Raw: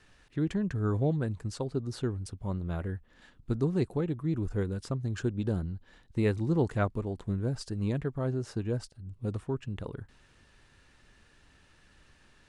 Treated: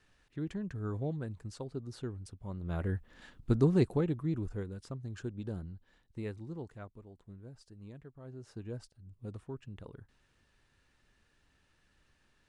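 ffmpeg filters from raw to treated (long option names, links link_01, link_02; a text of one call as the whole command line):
ffmpeg -i in.wav -af "volume=11.5dB,afade=type=in:start_time=2.56:duration=0.4:silence=0.298538,afade=type=out:start_time=3.71:duration=0.93:silence=0.266073,afade=type=out:start_time=5.74:duration=1.05:silence=0.316228,afade=type=in:start_time=8.22:duration=0.45:silence=0.354813" out.wav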